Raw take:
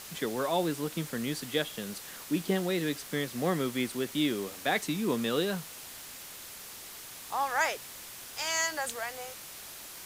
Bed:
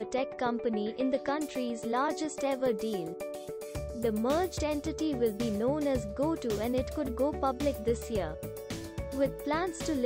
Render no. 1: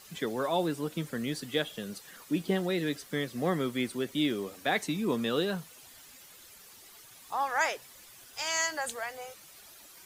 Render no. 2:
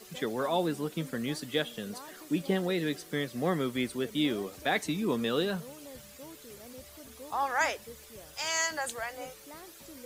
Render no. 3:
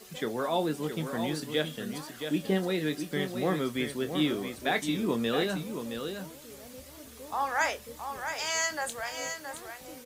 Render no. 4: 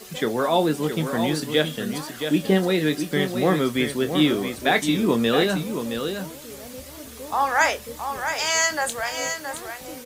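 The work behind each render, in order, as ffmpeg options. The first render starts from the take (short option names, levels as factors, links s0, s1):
-af "afftdn=nr=11:nf=-46"
-filter_complex "[1:a]volume=0.119[s0];[0:a][s0]amix=inputs=2:normalize=0"
-filter_complex "[0:a]asplit=2[s0][s1];[s1]adelay=26,volume=0.282[s2];[s0][s2]amix=inputs=2:normalize=0,aecho=1:1:670:0.422"
-af "volume=2.66"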